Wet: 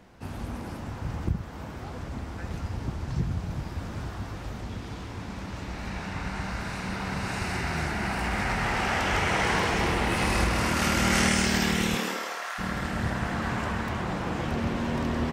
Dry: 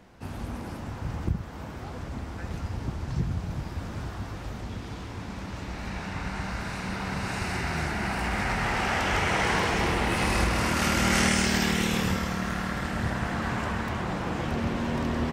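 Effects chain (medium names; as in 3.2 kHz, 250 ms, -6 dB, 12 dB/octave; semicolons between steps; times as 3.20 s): 11.96–12.58 s: high-pass 190 Hz -> 760 Hz 24 dB/octave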